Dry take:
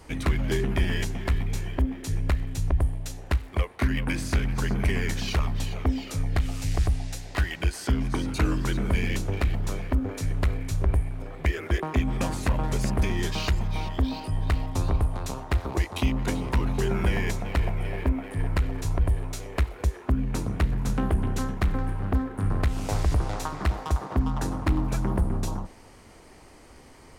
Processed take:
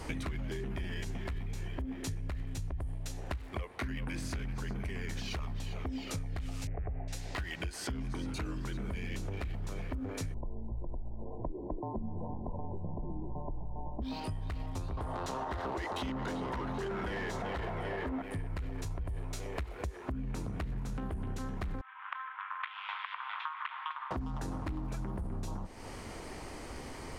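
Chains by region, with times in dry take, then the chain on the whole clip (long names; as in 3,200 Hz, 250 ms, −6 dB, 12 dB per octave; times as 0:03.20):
0:06.67–0:07.08: Butterworth low-pass 2,300 Hz 48 dB per octave + flat-topped bell 540 Hz +8.5 dB 1.2 octaves + one half of a high-frequency compander decoder only
0:10.34–0:14.02: linear-phase brick-wall low-pass 1,100 Hz + frequency shifter −40 Hz
0:14.97–0:18.22: parametric band 2,400 Hz −13.5 dB 0.2 octaves + mid-hump overdrive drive 23 dB, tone 1,700 Hz, clips at −14.5 dBFS
0:21.81–0:24.11: Chebyshev band-pass filter 980–3,400 Hz, order 4 + multiband upward and downward expander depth 40%
whole clip: high-shelf EQ 10,000 Hz −5.5 dB; brickwall limiter −22.5 dBFS; downward compressor 6 to 1, threshold −42 dBFS; level +6.5 dB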